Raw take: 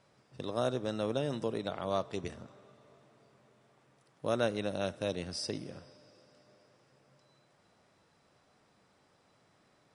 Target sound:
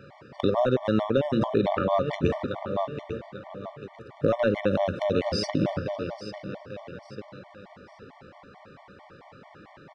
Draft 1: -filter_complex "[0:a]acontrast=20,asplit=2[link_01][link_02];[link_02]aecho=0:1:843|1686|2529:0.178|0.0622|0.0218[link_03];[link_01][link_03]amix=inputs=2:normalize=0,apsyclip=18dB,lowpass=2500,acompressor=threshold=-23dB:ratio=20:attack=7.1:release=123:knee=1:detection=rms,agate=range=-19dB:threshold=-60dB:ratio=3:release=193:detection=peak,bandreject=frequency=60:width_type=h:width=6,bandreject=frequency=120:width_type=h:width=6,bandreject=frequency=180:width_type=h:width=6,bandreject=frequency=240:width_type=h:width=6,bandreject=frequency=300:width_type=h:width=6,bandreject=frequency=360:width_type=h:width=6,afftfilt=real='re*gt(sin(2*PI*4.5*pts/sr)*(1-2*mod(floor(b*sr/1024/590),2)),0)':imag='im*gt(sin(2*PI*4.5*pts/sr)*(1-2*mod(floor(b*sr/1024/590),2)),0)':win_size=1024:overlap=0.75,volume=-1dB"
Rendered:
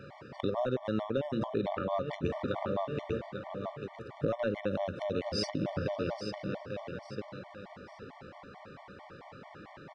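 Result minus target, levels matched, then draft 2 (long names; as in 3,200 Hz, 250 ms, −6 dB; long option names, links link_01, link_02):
downward compressor: peak gain reduction +8.5 dB
-filter_complex "[0:a]acontrast=20,asplit=2[link_01][link_02];[link_02]aecho=0:1:843|1686|2529:0.178|0.0622|0.0218[link_03];[link_01][link_03]amix=inputs=2:normalize=0,apsyclip=18dB,lowpass=2500,acompressor=threshold=-14dB:ratio=20:attack=7.1:release=123:knee=1:detection=rms,agate=range=-19dB:threshold=-60dB:ratio=3:release=193:detection=peak,bandreject=frequency=60:width_type=h:width=6,bandreject=frequency=120:width_type=h:width=6,bandreject=frequency=180:width_type=h:width=6,bandreject=frequency=240:width_type=h:width=6,bandreject=frequency=300:width_type=h:width=6,bandreject=frequency=360:width_type=h:width=6,afftfilt=real='re*gt(sin(2*PI*4.5*pts/sr)*(1-2*mod(floor(b*sr/1024/590),2)),0)':imag='im*gt(sin(2*PI*4.5*pts/sr)*(1-2*mod(floor(b*sr/1024/590),2)),0)':win_size=1024:overlap=0.75,volume=-1dB"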